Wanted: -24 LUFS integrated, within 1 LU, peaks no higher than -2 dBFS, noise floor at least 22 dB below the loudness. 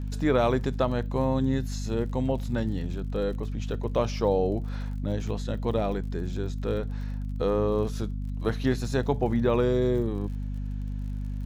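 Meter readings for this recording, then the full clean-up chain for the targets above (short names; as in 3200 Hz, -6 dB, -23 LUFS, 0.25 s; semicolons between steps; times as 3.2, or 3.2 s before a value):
ticks 48/s; hum 50 Hz; harmonics up to 250 Hz; hum level -29 dBFS; loudness -28.5 LUFS; peak -10.0 dBFS; loudness target -24.0 LUFS
-> de-click; notches 50/100/150/200/250 Hz; gain +4.5 dB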